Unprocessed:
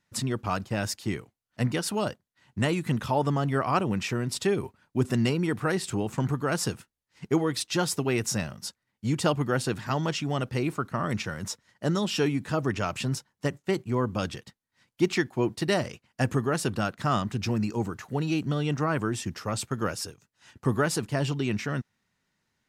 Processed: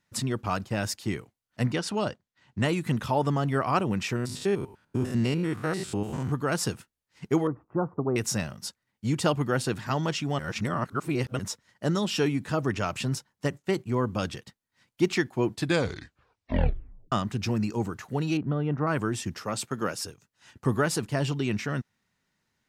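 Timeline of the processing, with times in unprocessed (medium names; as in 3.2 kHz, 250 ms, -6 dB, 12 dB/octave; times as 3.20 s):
1.72–2.65 s: low-pass 6.8 kHz
4.16–6.32 s: spectrogram pixelated in time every 100 ms
7.47–8.16 s: elliptic low-pass 1.2 kHz, stop band 70 dB
10.39–11.39 s: reverse
15.50 s: tape stop 1.62 s
18.37–18.87 s: low-pass 1.4 kHz
19.43–20.05 s: high-pass 150 Hz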